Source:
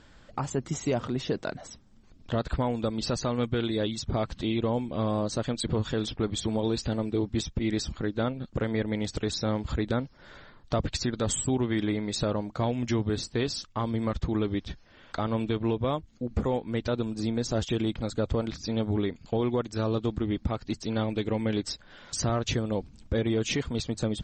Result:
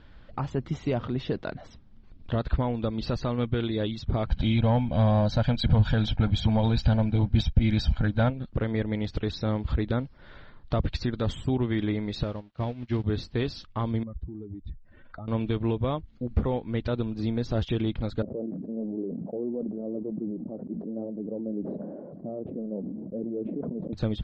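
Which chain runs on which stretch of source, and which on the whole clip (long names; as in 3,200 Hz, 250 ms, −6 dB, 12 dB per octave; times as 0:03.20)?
0:04.26–0:08.30: comb filter 1.3 ms, depth 84% + leveller curve on the samples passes 1 + one half of a high-frequency compander decoder only
0:12.23–0:13.04: spike at every zero crossing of −25 dBFS + high-frequency loss of the air 120 metres + expander for the loud parts 2.5 to 1, over −47 dBFS
0:14.03–0:15.28: expanding power law on the bin magnitudes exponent 2 + notch filter 3,300 Hz, Q 5.8 + downward compressor, threshold −37 dBFS
0:18.22–0:23.93: Chebyshev band-pass filter 180–610 Hz, order 3 + flanger 1 Hz, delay 0.8 ms, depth 4.5 ms, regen −49% + level that may fall only so fast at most 25 dB per second
whole clip: low-pass filter 4,200 Hz 24 dB per octave; low-shelf EQ 120 Hz +9 dB; level −1.5 dB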